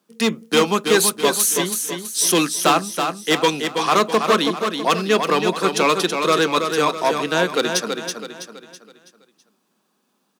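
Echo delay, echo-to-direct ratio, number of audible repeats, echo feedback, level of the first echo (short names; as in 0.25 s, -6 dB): 0.327 s, -5.0 dB, 4, 42%, -6.0 dB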